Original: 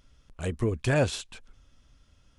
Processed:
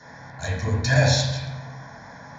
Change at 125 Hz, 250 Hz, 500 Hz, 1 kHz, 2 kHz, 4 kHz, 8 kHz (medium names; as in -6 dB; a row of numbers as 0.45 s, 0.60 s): +9.0 dB, +2.5 dB, +2.0 dB, +7.5 dB, +9.0 dB, +12.0 dB, +10.0 dB